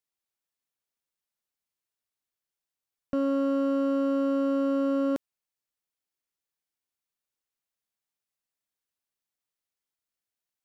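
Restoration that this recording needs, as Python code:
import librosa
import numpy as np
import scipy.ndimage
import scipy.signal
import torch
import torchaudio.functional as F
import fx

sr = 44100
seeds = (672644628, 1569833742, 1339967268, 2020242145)

y = fx.fix_declip(x, sr, threshold_db=-22.5)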